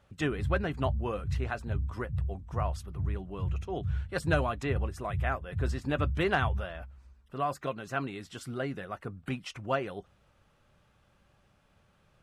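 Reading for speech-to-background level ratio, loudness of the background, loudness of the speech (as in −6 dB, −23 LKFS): 1.0 dB, −36.0 LKFS, −35.0 LKFS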